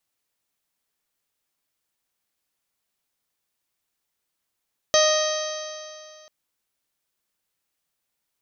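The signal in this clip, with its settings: stretched partials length 1.34 s, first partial 616 Hz, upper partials -8/-9.5/-17.5/-9/-10/-10/-11/-5 dB, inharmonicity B 0.0028, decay 2.37 s, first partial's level -16 dB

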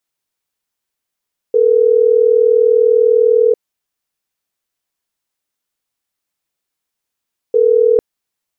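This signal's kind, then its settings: call progress tone ringback tone, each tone -10.5 dBFS 6.45 s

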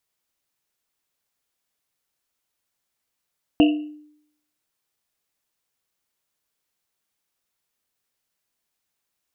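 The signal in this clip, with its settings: Risset drum, pitch 300 Hz, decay 0.72 s, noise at 2800 Hz, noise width 290 Hz, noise 15%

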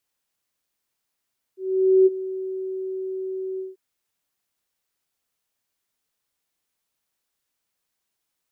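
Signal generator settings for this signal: ADSR sine 378 Hz, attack 0.492 s, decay 27 ms, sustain -16 dB, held 2.02 s, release 0.169 s -10.5 dBFS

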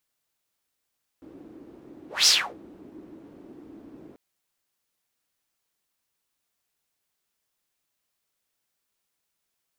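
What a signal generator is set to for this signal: whoosh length 2.94 s, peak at 1.05, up 0.20 s, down 0.32 s, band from 310 Hz, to 5500 Hz, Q 4.6, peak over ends 30 dB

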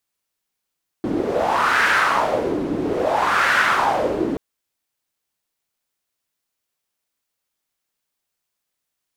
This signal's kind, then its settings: wind-like swept noise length 3.33 s, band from 300 Hz, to 1600 Hz, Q 3.5, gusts 2, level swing 6 dB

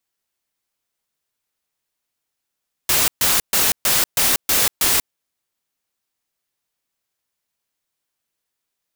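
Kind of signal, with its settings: noise bursts white, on 0.19 s, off 0.13 s, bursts 7, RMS -16.5 dBFS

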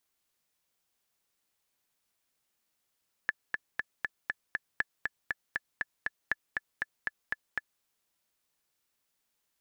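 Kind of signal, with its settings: metronome 238 bpm, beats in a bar 6, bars 3, 1730 Hz, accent 3.5 dB -14 dBFS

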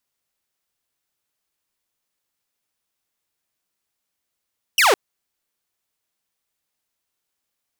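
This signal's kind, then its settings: laser zap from 3100 Hz, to 350 Hz, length 0.16 s saw, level -9.5 dB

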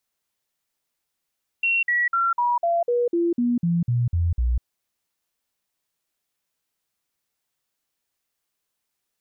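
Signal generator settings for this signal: stepped sine 2730 Hz down, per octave 2, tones 12, 0.20 s, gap 0.05 s -18 dBFS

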